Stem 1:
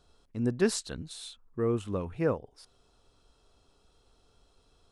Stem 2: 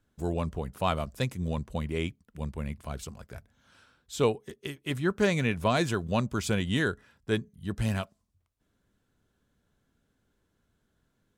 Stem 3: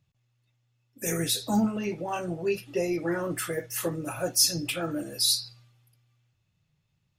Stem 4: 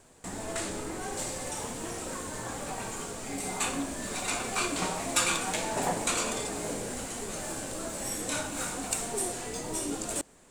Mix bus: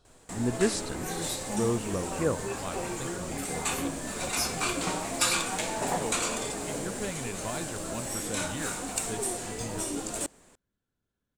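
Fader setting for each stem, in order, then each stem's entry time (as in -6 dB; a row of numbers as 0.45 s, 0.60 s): 0.0 dB, -11.0 dB, -10.0 dB, 0.0 dB; 0.00 s, 1.80 s, 0.00 s, 0.05 s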